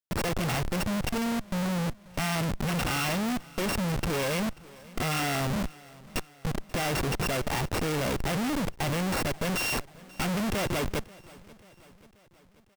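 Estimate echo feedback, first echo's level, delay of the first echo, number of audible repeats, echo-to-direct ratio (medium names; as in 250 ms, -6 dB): 58%, -22.0 dB, 536 ms, 3, -20.5 dB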